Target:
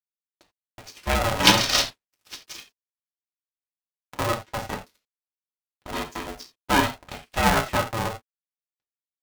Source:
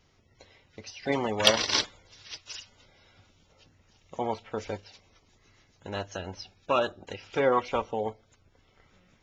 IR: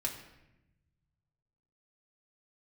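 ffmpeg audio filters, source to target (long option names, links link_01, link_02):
-filter_complex "[0:a]aeval=exprs='sgn(val(0))*max(abs(val(0))-0.00562,0)':channel_layout=same[link_01];[1:a]atrim=start_sample=2205,afade=type=out:start_time=0.14:duration=0.01,atrim=end_sample=6615[link_02];[link_01][link_02]afir=irnorm=-1:irlink=0,aeval=exprs='val(0)*sgn(sin(2*PI*340*n/s))':channel_layout=same,volume=4dB"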